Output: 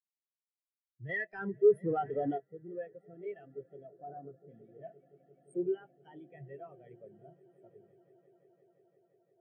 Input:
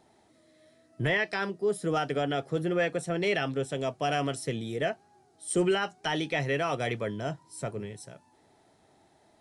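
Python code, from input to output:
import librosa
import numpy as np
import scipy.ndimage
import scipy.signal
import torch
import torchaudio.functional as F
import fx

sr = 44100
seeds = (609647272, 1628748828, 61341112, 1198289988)

y = fx.echo_swell(x, sr, ms=173, loudest=8, wet_db=-14.5)
y = fx.leveller(y, sr, passes=3, at=(1.09, 2.38))
y = fx.steep_lowpass(y, sr, hz=1800.0, slope=36, at=(3.87, 4.47), fade=0.02)
y = fx.spectral_expand(y, sr, expansion=2.5)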